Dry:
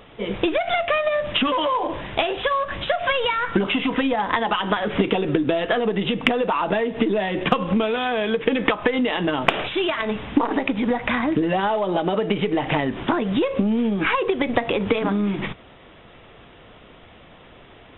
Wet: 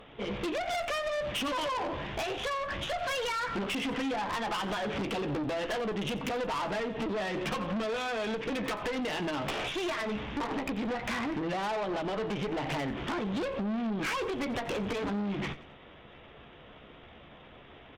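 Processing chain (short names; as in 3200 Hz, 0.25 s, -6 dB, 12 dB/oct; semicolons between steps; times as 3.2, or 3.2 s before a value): doubler 14 ms -9 dB; tube stage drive 27 dB, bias 0.55; feedback echo 89 ms, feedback 42%, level -18 dB; gain -3 dB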